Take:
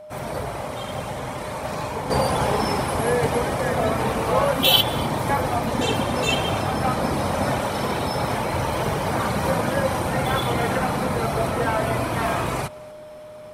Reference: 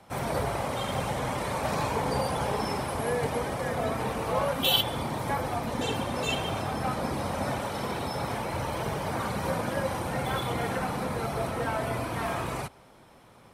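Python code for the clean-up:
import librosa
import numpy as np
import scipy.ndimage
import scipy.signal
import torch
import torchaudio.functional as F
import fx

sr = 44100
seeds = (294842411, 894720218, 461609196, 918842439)

y = fx.notch(x, sr, hz=610.0, q=30.0)
y = fx.fix_echo_inverse(y, sr, delay_ms=245, level_db=-23.0)
y = fx.gain(y, sr, db=fx.steps((0.0, 0.0), (2.1, -7.5)))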